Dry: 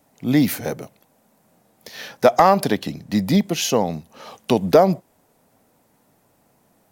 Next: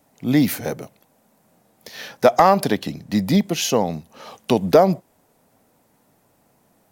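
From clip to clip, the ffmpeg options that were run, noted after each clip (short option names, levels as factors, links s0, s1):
-af anull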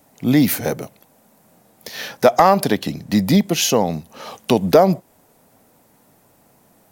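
-filter_complex "[0:a]highshelf=f=9400:g=4,asplit=2[s0][s1];[s1]alimiter=limit=0.2:level=0:latency=1:release=346,volume=1[s2];[s0][s2]amix=inputs=2:normalize=0,volume=0.891"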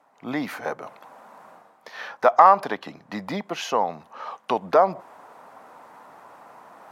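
-af "areverse,acompressor=mode=upward:threshold=0.0447:ratio=2.5,areverse,bandpass=f=1100:t=q:w=2.1:csg=0,volume=1.5"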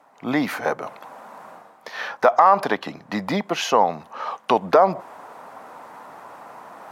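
-af "alimiter=level_in=2.82:limit=0.891:release=50:level=0:latency=1,volume=0.708"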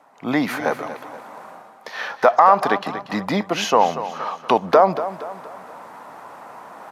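-af "aecho=1:1:236|472|708|944:0.237|0.102|0.0438|0.0189,aresample=32000,aresample=44100,volume=1.19"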